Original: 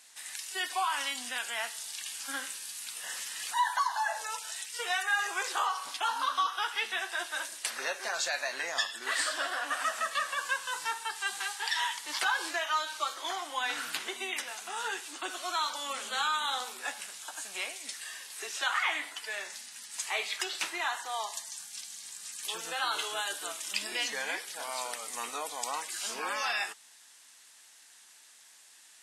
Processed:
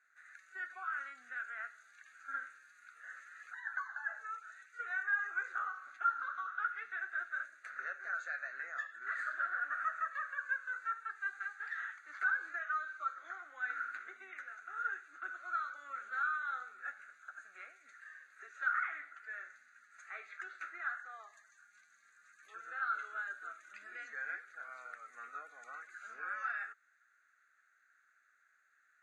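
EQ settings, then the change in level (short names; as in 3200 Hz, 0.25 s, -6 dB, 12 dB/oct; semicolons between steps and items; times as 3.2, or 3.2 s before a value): double band-pass 3000 Hz, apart 2.2 oct; air absorption 340 m; fixed phaser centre 2300 Hz, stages 4; +10.0 dB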